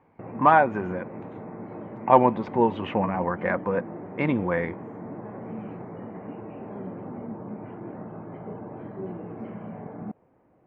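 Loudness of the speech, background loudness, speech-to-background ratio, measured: -24.0 LUFS, -38.5 LUFS, 14.5 dB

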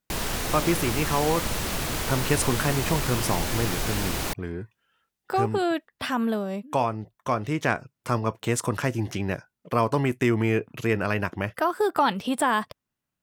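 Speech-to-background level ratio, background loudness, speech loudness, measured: 1.0 dB, -28.0 LUFS, -27.0 LUFS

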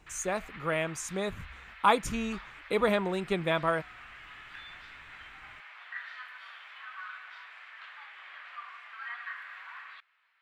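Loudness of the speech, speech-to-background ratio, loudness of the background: -30.5 LUFS, 15.0 dB, -45.5 LUFS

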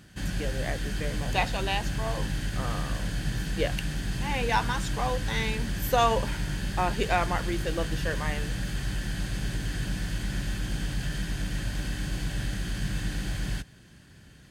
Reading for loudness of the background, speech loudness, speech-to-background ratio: -32.5 LUFS, -31.5 LUFS, 1.0 dB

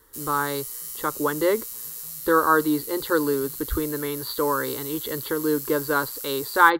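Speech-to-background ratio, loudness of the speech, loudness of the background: 7.5 dB, -25.0 LUFS, -32.5 LUFS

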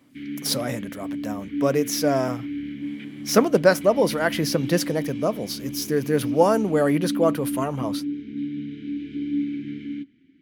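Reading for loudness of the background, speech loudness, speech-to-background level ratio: -31.5 LUFS, -23.0 LUFS, 8.5 dB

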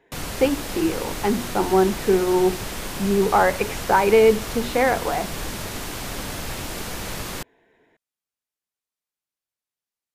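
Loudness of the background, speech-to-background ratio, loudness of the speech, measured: -30.5 LUFS, 9.5 dB, -21.0 LUFS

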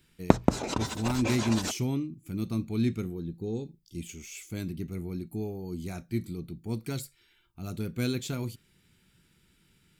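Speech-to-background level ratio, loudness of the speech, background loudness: -3.5 dB, -33.5 LUFS, -30.0 LUFS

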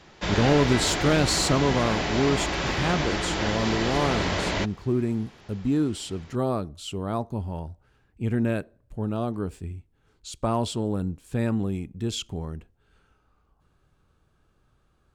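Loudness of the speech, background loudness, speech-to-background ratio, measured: -27.5 LUFS, -27.0 LUFS, -0.5 dB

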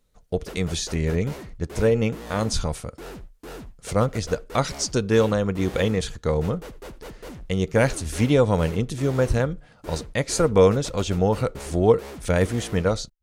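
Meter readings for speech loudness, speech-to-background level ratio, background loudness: -23.5 LUFS, 17.5 dB, -41.0 LUFS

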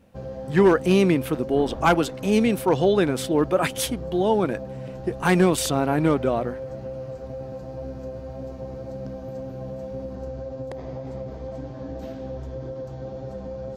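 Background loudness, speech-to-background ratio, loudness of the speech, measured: -35.0 LUFS, 13.0 dB, -22.0 LUFS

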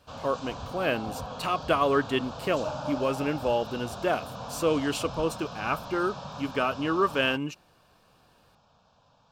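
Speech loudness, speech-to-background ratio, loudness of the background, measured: -29.0 LUFS, 10.0 dB, -39.0 LUFS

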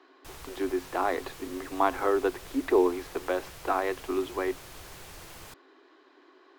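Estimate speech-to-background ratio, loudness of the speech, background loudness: 16.5 dB, -29.5 LUFS, -46.0 LUFS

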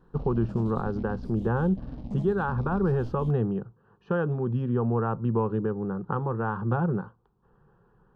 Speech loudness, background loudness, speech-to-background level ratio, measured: -28.0 LUFS, -40.5 LUFS, 12.5 dB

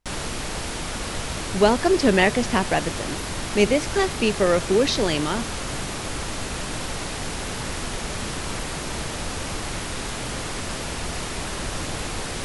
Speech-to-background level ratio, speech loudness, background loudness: 8.0 dB, -21.5 LUFS, -29.5 LUFS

